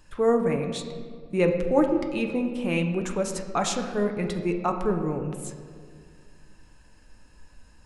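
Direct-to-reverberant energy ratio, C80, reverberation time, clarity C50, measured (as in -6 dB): 4.0 dB, 8.5 dB, 2.0 s, 7.0 dB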